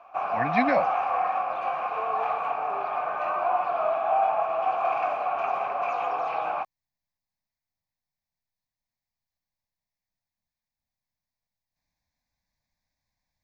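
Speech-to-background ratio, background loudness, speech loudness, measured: -0.5 dB, -27.0 LUFS, -27.5 LUFS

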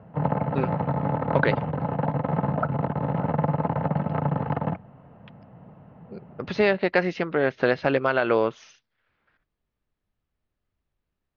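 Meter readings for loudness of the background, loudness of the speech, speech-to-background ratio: -26.5 LUFS, -24.5 LUFS, 2.0 dB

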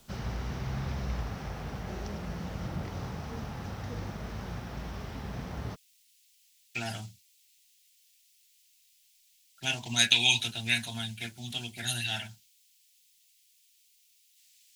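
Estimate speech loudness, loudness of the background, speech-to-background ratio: -29.0 LUFS, -38.0 LUFS, 9.0 dB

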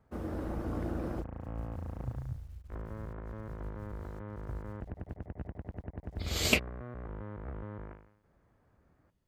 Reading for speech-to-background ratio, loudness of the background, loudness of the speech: 7.5 dB, -44.0 LUFS, -36.5 LUFS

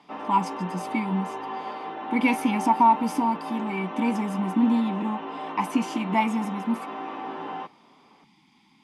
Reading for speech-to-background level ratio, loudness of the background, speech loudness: 9.0 dB, -34.5 LUFS, -25.5 LUFS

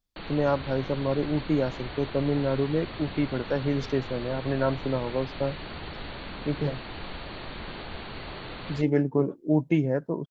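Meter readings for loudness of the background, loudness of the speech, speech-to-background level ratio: -39.0 LUFS, -28.0 LUFS, 11.0 dB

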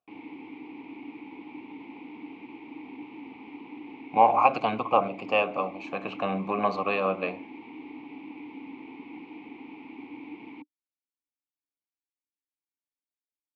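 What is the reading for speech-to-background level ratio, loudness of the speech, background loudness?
17.5 dB, -26.0 LUFS, -43.5 LUFS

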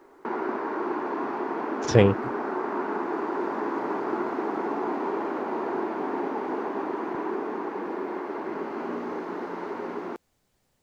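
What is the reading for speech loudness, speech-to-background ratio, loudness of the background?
-21.5 LUFS, 9.0 dB, -30.5 LUFS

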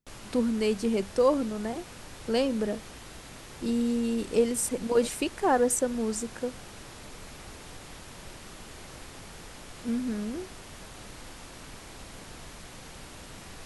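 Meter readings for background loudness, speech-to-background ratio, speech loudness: -45.0 LUFS, 16.5 dB, -28.5 LUFS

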